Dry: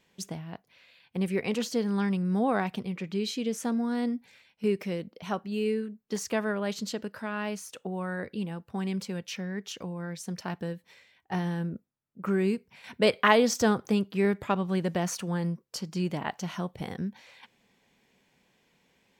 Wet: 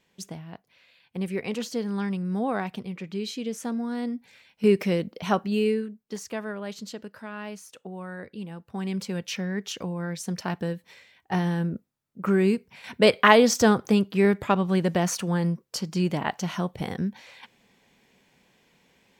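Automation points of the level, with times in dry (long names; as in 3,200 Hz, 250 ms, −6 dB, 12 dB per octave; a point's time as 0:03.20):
0:04.08 −1 dB
0:04.73 +8 dB
0:05.46 +8 dB
0:06.22 −4 dB
0:08.37 −4 dB
0:09.24 +5 dB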